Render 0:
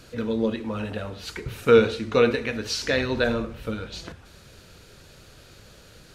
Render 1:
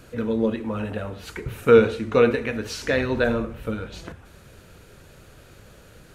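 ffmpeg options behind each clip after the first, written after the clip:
-af "equalizer=f=4600:t=o:w=1.2:g=-9,volume=1.26"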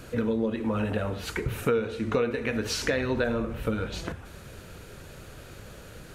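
-af "acompressor=threshold=0.0447:ratio=6,volume=1.5"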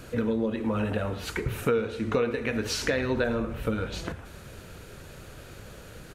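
-filter_complex "[0:a]asplit=2[s0][s1];[s1]adelay=110,highpass=300,lowpass=3400,asoftclip=type=hard:threshold=0.0944,volume=0.158[s2];[s0][s2]amix=inputs=2:normalize=0"

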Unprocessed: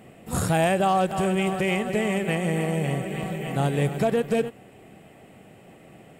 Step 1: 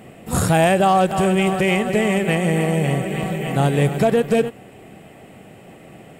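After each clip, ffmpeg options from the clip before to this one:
-af "acontrast=64"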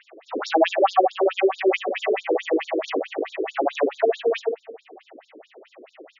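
-filter_complex "[0:a]acrossover=split=150|840|3000[s0][s1][s2][s3];[s0]acrusher=bits=3:mix=0:aa=0.000001[s4];[s1]aecho=1:1:71|142|213|284|355|426|497|568|639:0.631|0.379|0.227|0.136|0.0818|0.0491|0.0294|0.0177|0.0106[s5];[s4][s5][s2][s3]amix=inputs=4:normalize=0,afftfilt=real='re*between(b*sr/1024,360*pow(5100/360,0.5+0.5*sin(2*PI*4.6*pts/sr))/1.41,360*pow(5100/360,0.5+0.5*sin(2*PI*4.6*pts/sr))*1.41)':imag='im*between(b*sr/1024,360*pow(5100/360,0.5+0.5*sin(2*PI*4.6*pts/sr))/1.41,360*pow(5100/360,0.5+0.5*sin(2*PI*4.6*pts/sr))*1.41)':win_size=1024:overlap=0.75,volume=1.5"

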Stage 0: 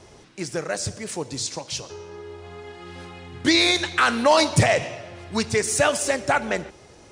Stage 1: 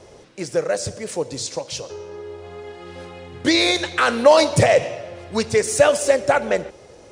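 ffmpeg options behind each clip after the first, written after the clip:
-af "equalizer=f=520:w=2.4:g=10"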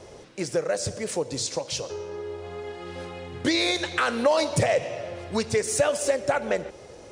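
-af "acompressor=threshold=0.0562:ratio=2"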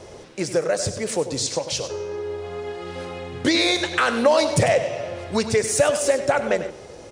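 -af "aecho=1:1:99:0.266,volume=1.58"

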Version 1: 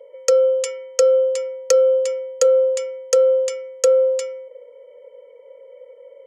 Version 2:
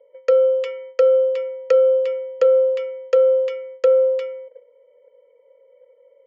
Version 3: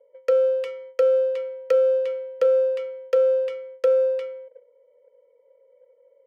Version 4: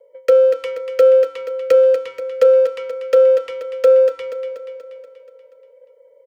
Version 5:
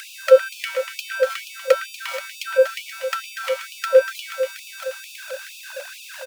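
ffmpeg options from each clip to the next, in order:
-af "agate=range=0.316:threshold=0.0126:ratio=16:detection=peak,lowpass=f=3200:w=0.5412,lowpass=f=3200:w=1.3066"
-af "adynamicsmooth=sensitivity=7:basefreq=2500,volume=0.631"
-filter_complex "[0:a]acrossover=split=610|890|1200[s0][s1][s2][s3];[s2]aeval=exprs='(mod(75*val(0)+1,2)-1)/75':c=same[s4];[s0][s1][s4][s3]amix=inputs=4:normalize=0,aecho=1:1:240|480|720|960|1200|1440|1680:0.376|0.218|0.126|0.0733|0.0425|0.0247|0.0143,volume=2.37"
-filter_complex "[0:a]aeval=exprs='val(0)+0.5*0.0376*sgn(val(0))':c=same,asplit=2[s0][s1];[s1]adelay=110,highpass=300,lowpass=3400,asoftclip=type=hard:threshold=0.266,volume=0.316[s2];[s0][s2]amix=inputs=2:normalize=0,afftfilt=real='re*gte(b*sr/1024,500*pow(2400/500,0.5+0.5*sin(2*PI*2.2*pts/sr)))':imag='im*gte(b*sr/1024,500*pow(2400/500,0.5+0.5*sin(2*PI*2.2*pts/sr)))':win_size=1024:overlap=0.75,volume=1.58"

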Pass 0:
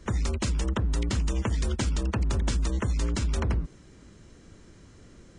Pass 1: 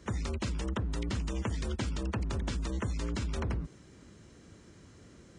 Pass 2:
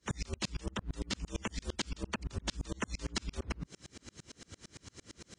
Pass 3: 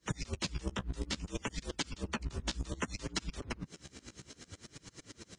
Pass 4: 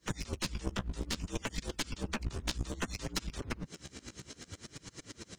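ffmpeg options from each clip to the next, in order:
-filter_complex "[0:a]acrossover=split=5100[s0][s1];[s1]acompressor=threshold=0.00562:ratio=4:attack=1:release=60[s2];[s0][s2]amix=inputs=2:normalize=0,highpass=65,asplit=2[s3][s4];[s4]alimiter=level_in=1.5:limit=0.0631:level=0:latency=1,volume=0.668,volume=0.891[s5];[s3][s5]amix=inputs=2:normalize=0,volume=0.422"
-af "equalizer=f=5300:t=o:w=2.8:g=11.5,acompressor=threshold=0.0178:ratio=6,aeval=exprs='val(0)*pow(10,-36*if(lt(mod(-8.8*n/s,1),2*abs(-8.8)/1000),1-mod(-8.8*n/s,1)/(2*abs(-8.8)/1000),(mod(-8.8*n/s,1)-2*abs(-8.8)/1000)/(1-2*abs(-8.8)/1000))/20)':c=same,volume=2.51"
-af "flanger=delay=6.1:depth=9.9:regen=-17:speed=0.61:shape=sinusoidal,volume=1.58"
-af "aeval=exprs='clip(val(0),-1,0.00841)':c=same,volume=1.5"

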